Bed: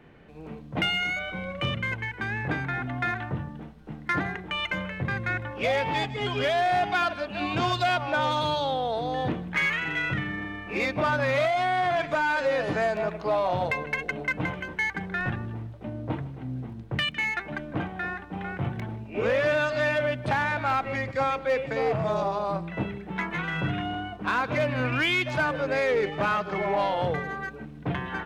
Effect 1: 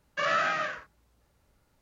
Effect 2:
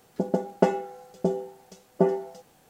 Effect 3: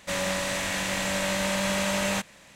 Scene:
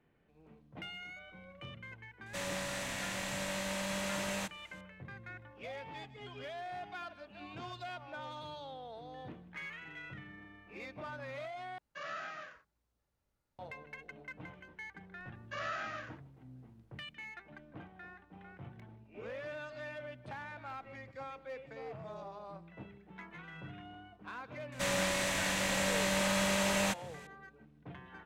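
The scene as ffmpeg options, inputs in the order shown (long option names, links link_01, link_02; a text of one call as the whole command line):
ffmpeg -i bed.wav -i cue0.wav -i cue1.wav -i cue2.wav -filter_complex "[3:a]asplit=2[link_01][link_02];[1:a]asplit=2[link_03][link_04];[0:a]volume=-19.5dB,asplit=2[link_05][link_06];[link_05]atrim=end=11.784[link_07];[link_03]atrim=end=1.81,asetpts=PTS-STARTPTS,volume=-16dB[link_08];[link_06]atrim=start=13.586[link_09];[link_01]atrim=end=2.55,asetpts=PTS-STARTPTS,volume=-10.5dB,afade=type=in:duration=0.004:curve=hsin,afade=type=out:start_time=2.546:duration=0.004:curve=hsin,adelay=2260[link_10];[link_04]atrim=end=1.81,asetpts=PTS-STARTPTS,volume=-12.5dB,afade=type=in:duration=0.004:curve=hsin,afade=type=out:start_time=1.806:duration=0.004:curve=hsin,adelay=15340[link_11];[link_02]atrim=end=2.55,asetpts=PTS-STARTPTS,volume=-4.5dB,afade=type=in:duration=0.004:curve=hsin,afade=type=out:start_time=2.546:duration=0.004:curve=hsin,adelay=1090152S[link_12];[link_07][link_08]acrossfade=duration=0.004:curve1=hsin:curve2=hsin[link_13];[link_13][link_09]acrossfade=duration=0.004:curve1=hsin:curve2=hsin[link_14];[link_14][link_10][link_11][link_12]amix=inputs=4:normalize=0" out.wav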